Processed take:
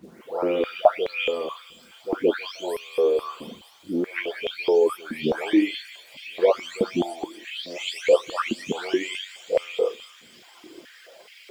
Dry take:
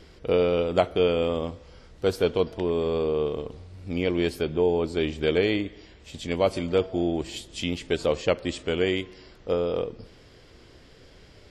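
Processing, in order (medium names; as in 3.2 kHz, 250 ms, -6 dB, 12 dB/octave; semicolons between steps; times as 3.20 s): delay that grows with frequency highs late, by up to 579 ms; reverb removal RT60 1.3 s; in parallel at 0 dB: compression, threshold -41 dBFS, peak gain reduction 21 dB; on the sum: bit crusher 10-bit; on a send: feedback echo behind a high-pass 235 ms, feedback 81%, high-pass 3.5 kHz, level -10 dB; on the sum: step-sequenced high-pass 4.7 Hz 220–2300 Hz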